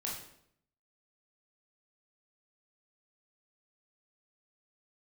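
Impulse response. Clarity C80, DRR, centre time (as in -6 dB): 7.5 dB, -4.0 dB, 41 ms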